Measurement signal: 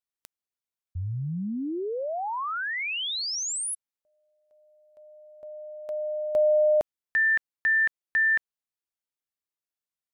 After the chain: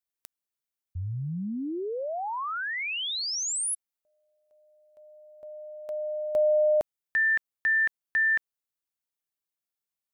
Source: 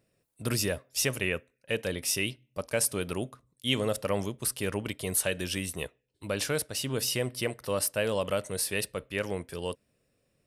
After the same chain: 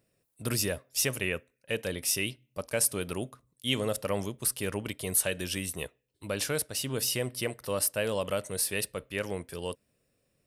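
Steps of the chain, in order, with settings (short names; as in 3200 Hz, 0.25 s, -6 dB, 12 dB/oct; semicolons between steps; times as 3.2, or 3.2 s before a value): high shelf 9800 Hz +6.5 dB; gain -1.5 dB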